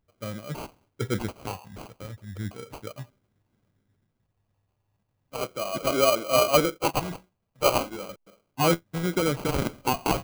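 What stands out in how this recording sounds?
phaser sweep stages 2, 0.37 Hz, lowest notch 320–1,900 Hz
aliases and images of a low sample rate 1,800 Hz, jitter 0%

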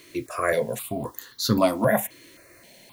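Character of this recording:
a quantiser's noise floor 10 bits, dither triangular
notches that jump at a steady rate 3.8 Hz 220–2,500 Hz

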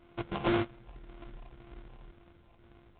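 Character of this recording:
a buzz of ramps at a fixed pitch in blocks of 128 samples
phaser sweep stages 4, 1.9 Hz, lowest notch 420–2,500 Hz
aliases and images of a low sample rate 1,800 Hz, jitter 20%
mu-law

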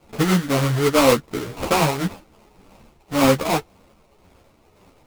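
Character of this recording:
aliases and images of a low sample rate 1,700 Hz, jitter 20%
tremolo triangle 1.9 Hz, depth 55%
a shimmering, thickened sound

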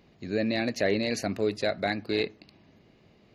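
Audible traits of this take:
background noise floor −60 dBFS
spectral slope −3.5 dB per octave

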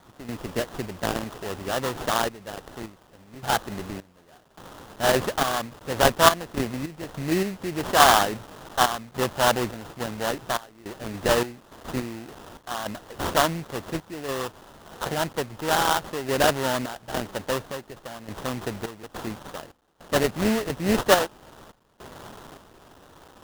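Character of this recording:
a quantiser's noise floor 8 bits, dither triangular
sample-and-hold tremolo, depth 95%
aliases and images of a low sample rate 2,300 Hz, jitter 20%

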